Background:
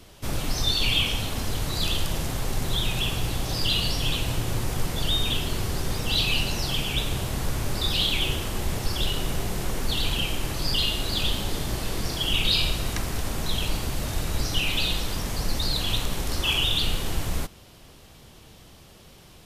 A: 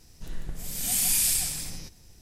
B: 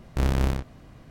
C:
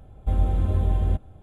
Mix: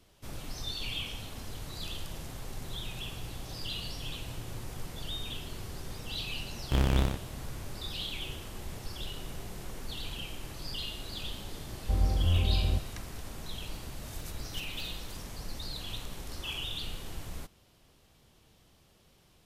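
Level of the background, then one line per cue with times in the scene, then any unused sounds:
background −13.5 dB
0:06.55: mix in B −3 dB
0:11.62: mix in C −5.5 dB + buffer that repeats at 0:00.64
0:13.47: mix in A −10 dB + gate on every frequency bin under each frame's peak −25 dB weak

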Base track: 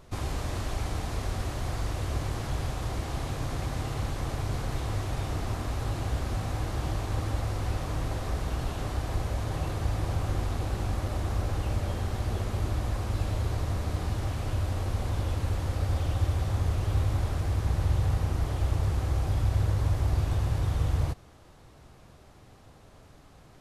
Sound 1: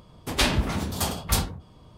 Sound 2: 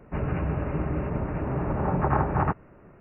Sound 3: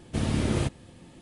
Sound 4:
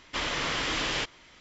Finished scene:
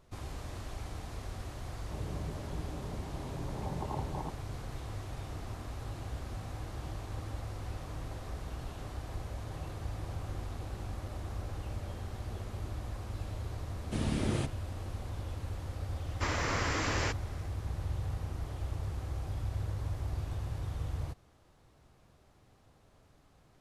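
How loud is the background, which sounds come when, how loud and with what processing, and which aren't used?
base track −10 dB
0:01.78: mix in 2 −14 dB + linear-phase brick-wall low-pass 1,100 Hz
0:13.78: mix in 3 −6 dB
0:16.07: mix in 4 −0.5 dB + parametric band 3,300 Hz −13 dB 0.78 octaves
not used: 1

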